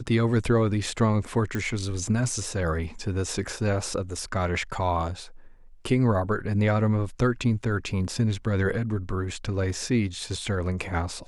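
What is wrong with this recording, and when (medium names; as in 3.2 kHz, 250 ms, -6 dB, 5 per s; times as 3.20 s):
1.55 s: pop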